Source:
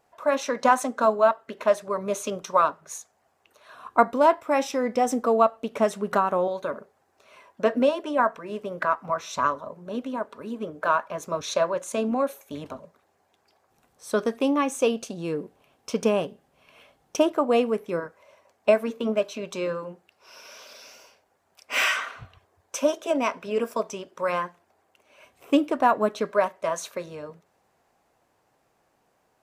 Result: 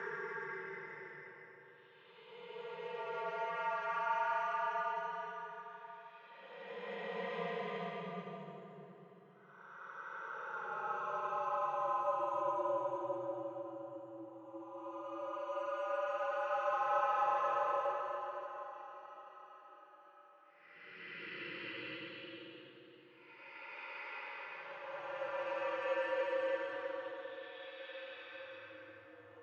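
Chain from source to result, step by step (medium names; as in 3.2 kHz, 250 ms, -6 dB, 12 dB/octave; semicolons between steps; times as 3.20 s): in parallel at -2.5 dB: upward compressor, threshold -26 dBFS; on the sum: differentiator; reverse; compression 12:1, threshold -44 dBFS, peak gain reduction 21 dB; reverse; careless resampling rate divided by 6×, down filtered, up zero stuff; Paulstretch 22×, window 0.10 s, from 0.52 s; reverberation RT60 3.3 s, pre-delay 3 ms, DRR 2 dB; mistuned SSB -83 Hz 260–3100 Hz; trim +7.5 dB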